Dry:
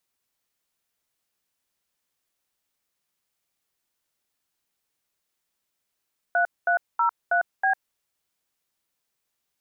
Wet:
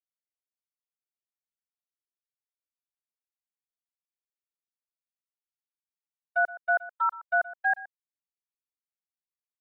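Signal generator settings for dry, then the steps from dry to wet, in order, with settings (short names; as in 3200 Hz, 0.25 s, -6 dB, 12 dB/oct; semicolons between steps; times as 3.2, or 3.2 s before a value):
DTMF "3303B", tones 0.101 s, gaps 0.22 s, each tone -21 dBFS
gate -23 dBFS, range -60 dB; bell 870 Hz -10 dB 0.27 oct; echo 0.121 s -17.5 dB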